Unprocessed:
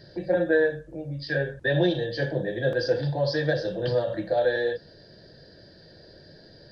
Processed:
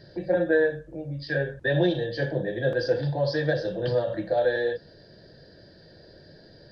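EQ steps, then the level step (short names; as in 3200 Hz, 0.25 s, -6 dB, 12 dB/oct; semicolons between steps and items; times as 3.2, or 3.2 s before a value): high shelf 4400 Hz -5 dB; 0.0 dB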